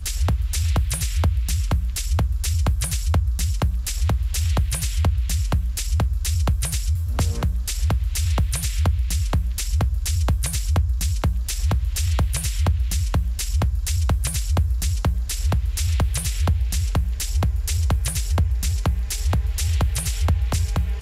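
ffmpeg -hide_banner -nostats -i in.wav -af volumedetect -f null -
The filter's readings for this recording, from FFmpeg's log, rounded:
mean_volume: -20.8 dB
max_volume: -11.0 dB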